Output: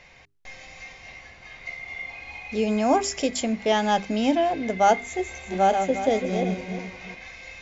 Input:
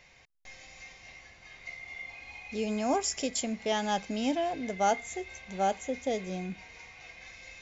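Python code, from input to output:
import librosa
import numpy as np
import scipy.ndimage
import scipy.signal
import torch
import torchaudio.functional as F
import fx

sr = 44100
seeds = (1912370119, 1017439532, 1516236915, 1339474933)

y = fx.reverse_delay_fb(x, sr, ms=178, feedback_pct=51, wet_db=-5.5, at=(5.01, 7.15))
y = fx.lowpass(y, sr, hz=3400.0, slope=6)
y = fx.hum_notches(y, sr, base_hz=50, count=8)
y = F.gain(torch.from_numpy(y), 8.5).numpy()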